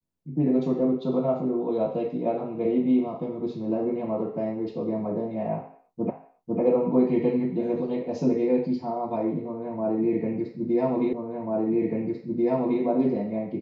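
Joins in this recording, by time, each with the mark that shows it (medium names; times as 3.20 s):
6.10 s: repeat of the last 0.5 s
11.13 s: repeat of the last 1.69 s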